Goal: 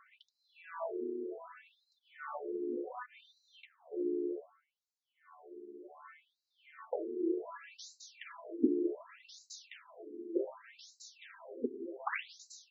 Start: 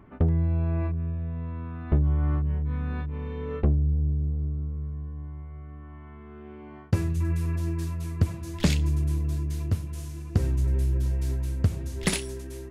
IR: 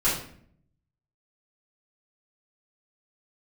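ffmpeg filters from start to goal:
-af "tremolo=f=280:d=0.571,flanger=delay=1.4:depth=3.8:regen=-48:speed=0.43:shape=sinusoidal,afftfilt=real='re*between(b*sr/1024,310*pow(5500/310,0.5+0.5*sin(2*PI*0.66*pts/sr))/1.41,310*pow(5500/310,0.5+0.5*sin(2*PI*0.66*pts/sr))*1.41)':imag='im*between(b*sr/1024,310*pow(5500/310,0.5+0.5*sin(2*PI*0.66*pts/sr))/1.41,310*pow(5500/310,0.5+0.5*sin(2*PI*0.66*pts/sr))*1.41)':win_size=1024:overlap=0.75,volume=9.5dB"

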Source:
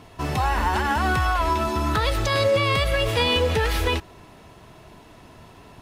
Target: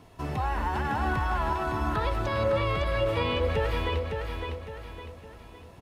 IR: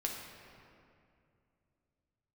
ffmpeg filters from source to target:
-filter_complex "[0:a]equalizer=f=2.8k:w=0.39:g=-3.5,acrossover=split=850|3400[a][b][c];[c]acompressor=threshold=-51dB:ratio=6[d];[a][b][d]amix=inputs=3:normalize=0,aecho=1:1:558|1116|1674|2232|2790:0.562|0.231|0.0945|0.0388|0.0159,volume=-5.5dB"

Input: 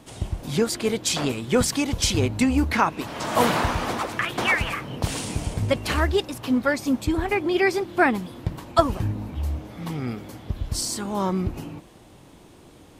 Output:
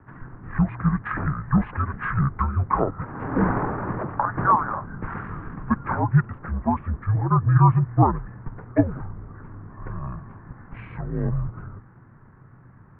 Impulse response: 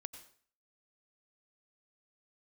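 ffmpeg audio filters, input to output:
-af "highpass=f=150:t=q:w=0.5412,highpass=f=150:t=q:w=1.307,lowpass=f=3.4k:t=q:w=0.5176,lowpass=f=3.4k:t=q:w=0.7071,lowpass=f=3.4k:t=q:w=1.932,afreqshift=-120,equalizer=f=125:t=o:w=1:g=-8,equalizer=f=250:t=o:w=1:g=8,equalizer=f=1k:t=o:w=1:g=-7,equalizer=f=2k:t=o:w=1:g=7,asetrate=23361,aresample=44100,atempo=1.88775"

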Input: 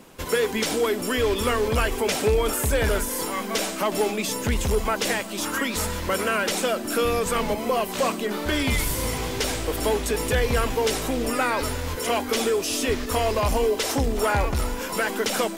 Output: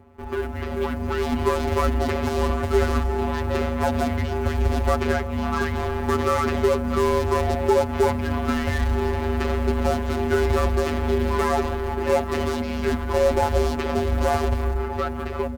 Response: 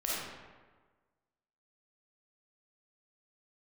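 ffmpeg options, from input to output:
-af "lowpass=1.4k,dynaudnorm=f=240:g=9:m=9dB,aeval=exprs='0.266*(cos(1*acos(clip(val(0)/0.266,-1,1)))-cos(1*PI/2))+0.00841*(cos(2*acos(clip(val(0)/0.266,-1,1)))-cos(2*PI/2))+0.0119*(cos(5*acos(clip(val(0)/0.266,-1,1)))-cos(5*PI/2))+0.0237*(cos(8*acos(clip(val(0)/0.266,-1,1)))-cos(8*PI/2))':c=same,acrusher=bits=8:mode=log:mix=0:aa=0.000001,afftfilt=real='hypot(re,im)*cos(PI*b)':imag='0':win_size=1024:overlap=0.75,asetrate=39289,aresample=44100,atempo=1.12246,afreqshift=-64"

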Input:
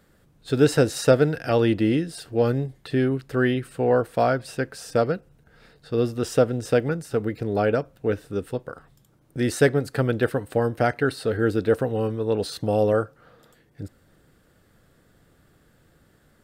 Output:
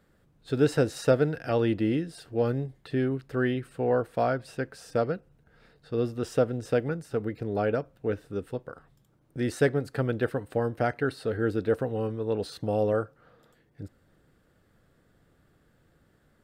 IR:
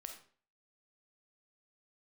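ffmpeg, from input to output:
-af "highshelf=f=4k:g=-6,volume=-5dB"

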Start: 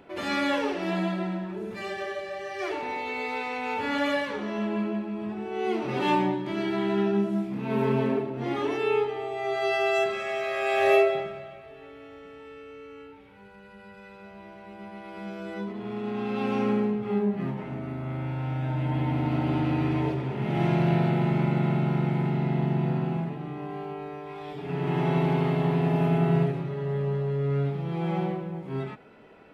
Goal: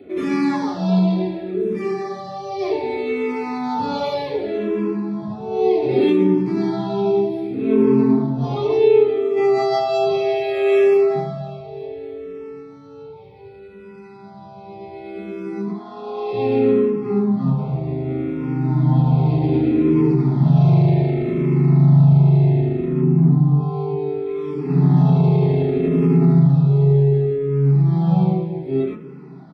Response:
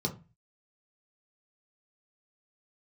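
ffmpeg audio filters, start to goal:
-filter_complex "[0:a]asplit=3[a][b][c];[a]afade=t=out:st=9.36:d=0.02[d];[b]acontrast=81,afade=t=in:st=9.36:d=0.02,afade=t=out:st=9.86:d=0.02[e];[c]afade=t=in:st=9.86:d=0.02[f];[d][e][f]amix=inputs=3:normalize=0,asplit=3[g][h][i];[g]afade=t=out:st=15.68:d=0.02[j];[h]highpass=f=320:w=0.5412,highpass=f=320:w=1.3066,afade=t=in:st=15.68:d=0.02,afade=t=out:st=16.32:d=0.02[k];[i]afade=t=in:st=16.32:d=0.02[l];[j][k][l]amix=inputs=3:normalize=0,asettb=1/sr,asplit=3[m][n][o];[m]atrim=end=23.014[p];[n]atrim=start=23.01:end=23.61,asetpts=PTS-STARTPTS,afade=t=in:d=0.004:c=qsin,afade=t=out:st=0.596:d=0.004:c=qsin,tiltshelf=f=820:g=5.5[q];[o]atrim=start=23.606[r];[p][q]acrossfade=d=0.004:c1=hsin:c2=qsin[s];[s][r]acrossfade=d=0.004:c1=qsin:c2=hsin,aecho=1:1:288|576|864|1152|1440:0.1|0.06|0.036|0.0216|0.013[t];[1:a]atrim=start_sample=2205,afade=t=out:st=0.16:d=0.01,atrim=end_sample=7497[u];[t][u]afir=irnorm=-1:irlink=0,alimiter=level_in=5.5dB:limit=-1dB:release=50:level=0:latency=1,asplit=2[v][w];[w]afreqshift=-0.66[x];[v][x]amix=inputs=2:normalize=1,volume=-4dB"

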